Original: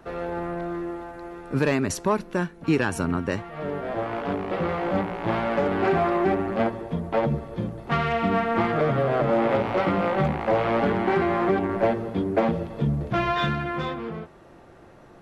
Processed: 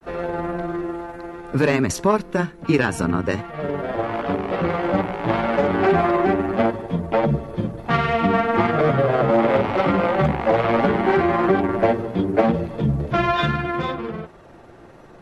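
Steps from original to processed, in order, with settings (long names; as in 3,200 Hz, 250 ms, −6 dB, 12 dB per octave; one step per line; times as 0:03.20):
granular cloud 100 ms, grains 20 per second, spray 12 ms, pitch spread up and down by 0 semitones
level +5.5 dB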